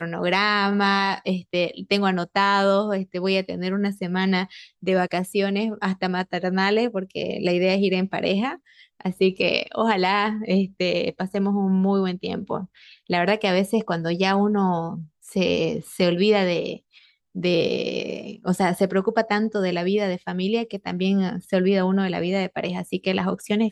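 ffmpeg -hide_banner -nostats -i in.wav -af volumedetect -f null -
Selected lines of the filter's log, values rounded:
mean_volume: -22.8 dB
max_volume: -5.7 dB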